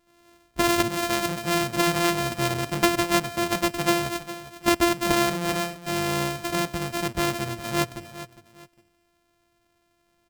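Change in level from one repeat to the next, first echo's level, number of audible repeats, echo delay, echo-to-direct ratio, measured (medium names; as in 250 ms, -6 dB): -10.5 dB, -14.0 dB, 2, 408 ms, -13.5 dB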